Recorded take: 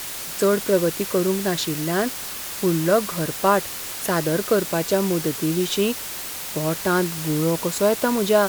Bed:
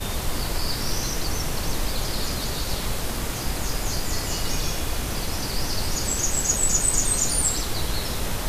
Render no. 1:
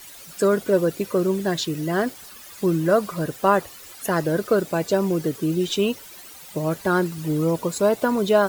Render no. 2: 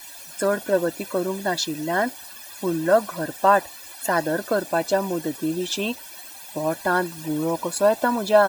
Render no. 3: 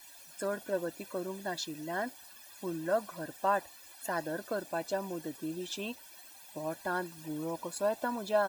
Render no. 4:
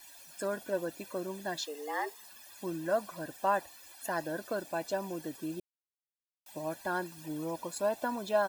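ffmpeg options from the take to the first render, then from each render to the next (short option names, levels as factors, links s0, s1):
-af "afftdn=nr=14:nf=-32"
-af "lowshelf=f=230:t=q:w=1.5:g=-9.5,aecho=1:1:1.2:0.75"
-af "volume=0.237"
-filter_complex "[0:a]asettb=1/sr,asplit=3[s0][s1][s2];[s0]atrim=end=1.664[s3];[s1]atrim=start=1.66:end=2.25,asetpts=PTS-STARTPTS,afade=t=in:d=0.004:c=qsin,afade=t=out:st=0.586:d=0.004:c=qsin,afreqshift=140[s4];[s2]atrim=start=2.246[s5];[s3][s4]acrossfade=d=0.004:c1=hsin:c2=qsin[s6];[s6][s5]acrossfade=d=0.004:c1=qsin:c2=hsin,asplit=3[s7][s8][s9];[s7]atrim=end=5.6,asetpts=PTS-STARTPTS,afade=t=out:st=5.596:d=0.004:c=hsin[s10];[s8]atrim=start=5.6:end=6.46,asetpts=PTS-STARTPTS,volume=0[s11];[s9]atrim=start=6.46,asetpts=PTS-STARTPTS,afade=t=in:d=0.004:c=hsin[s12];[s10][s11][s12]concat=n=3:v=0:a=1"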